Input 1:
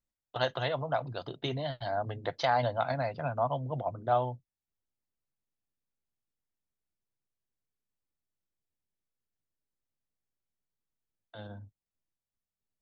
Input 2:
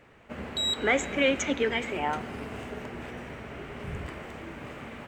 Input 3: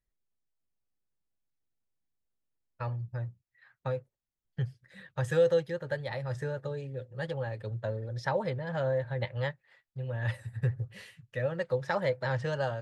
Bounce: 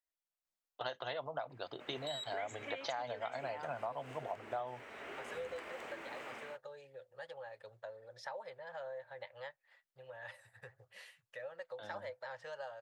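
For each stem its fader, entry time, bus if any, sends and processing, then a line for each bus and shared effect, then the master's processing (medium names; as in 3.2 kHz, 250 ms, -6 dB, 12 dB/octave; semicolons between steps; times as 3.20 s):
-3.5 dB, 0.45 s, no bus, no send, none
4.88 s -12.5 dB -> 5.13 s -2.5 dB, 1.50 s, bus A, no send, bass shelf 230 Hz -11 dB; level rider gain up to 6.5 dB
-5.5 dB, 0.00 s, bus A, no send, resonant low shelf 440 Hz -11 dB, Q 1.5
bus A: 0.0 dB, compression 2:1, threshold -48 dBFS, peak gain reduction 12 dB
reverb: none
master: tone controls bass -13 dB, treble 0 dB; compression 10:1, threshold -36 dBFS, peak gain reduction 11 dB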